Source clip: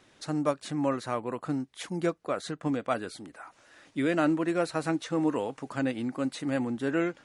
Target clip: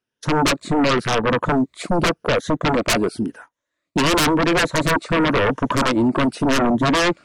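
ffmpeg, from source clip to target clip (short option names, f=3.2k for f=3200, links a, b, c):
-filter_complex "[0:a]afftfilt=real='re*pow(10,9/40*sin(2*PI*(1.1*log(max(b,1)*sr/1024/100)/log(2)-(0.94)*(pts-256)/sr)))':imag='im*pow(10,9/40*sin(2*PI*(1.1*log(max(b,1)*sr/1024/100)/log(2)-(0.94)*(pts-256)/sr)))':win_size=1024:overlap=0.75,afwtdn=0.0141,asplit=2[a][b];[b]acompressor=threshold=-35dB:ratio=6,volume=1dB[c];[a][c]amix=inputs=2:normalize=0,agate=range=-30dB:threshold=-52dB:ratio=16:detection=peak,aeval=exprs='0.398*(cos(1*acos(clip(val(0)/0.398,-1,1)))-cos(1*PI/2))+0.0178*(cos(7*acos(clip(val(0)/0.398,-1,1)))-cos(7*PI/2))':c=same,aeval=exprs='0.355*sin(PI/2*10*val(0)/0.355)':c=same,asuperstop=centerf=800:order=4:qfactor=7.5,volume=-4.5dB"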